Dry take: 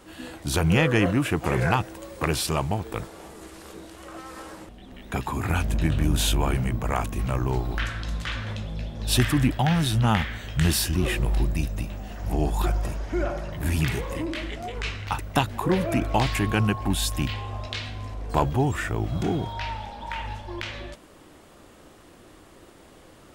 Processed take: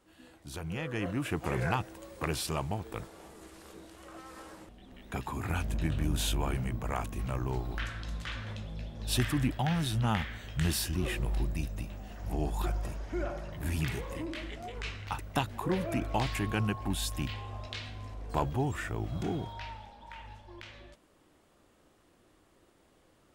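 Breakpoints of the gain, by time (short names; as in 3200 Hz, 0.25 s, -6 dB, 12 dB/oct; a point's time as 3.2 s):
0.77 s -17 dB
1.32 s -8 dB
19.39 s -8 dB
20 s -14.5 dB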